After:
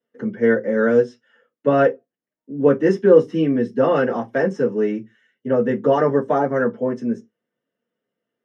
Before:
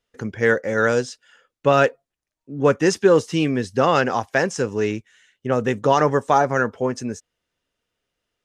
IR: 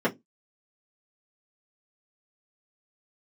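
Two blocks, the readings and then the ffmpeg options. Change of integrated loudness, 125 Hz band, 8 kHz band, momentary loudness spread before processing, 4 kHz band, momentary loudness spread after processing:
+1.0 dB, −2.0 dB, below −15 dB, 14 LU, below −10 dB, 11 LU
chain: -filter_complex "[1:a]atrim=start_sample=2205[link_01];[0:a][link_01]afir=irnorm=-1:irlink=0,volume=-16.5dB"

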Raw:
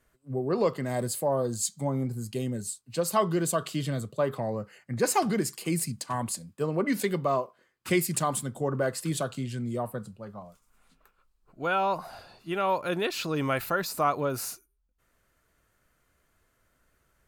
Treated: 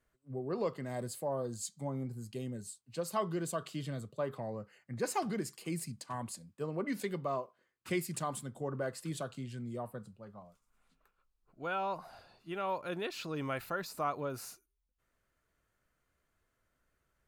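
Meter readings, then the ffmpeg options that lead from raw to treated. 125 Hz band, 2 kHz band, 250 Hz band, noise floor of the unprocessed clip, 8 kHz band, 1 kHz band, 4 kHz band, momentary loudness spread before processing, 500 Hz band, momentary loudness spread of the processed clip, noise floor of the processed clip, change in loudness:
−9.0 dB, −9.0 dB, −9.0 dB, −72 dBFS, −11.5 dB, −9.0 dB, −10.0 dB, 10 LU, −9.0 dB, 10 LU, −81 dBFS, −9.5 dB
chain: -af "highshelf=frequency=8200:gain=-5.5,volume=-9dB"

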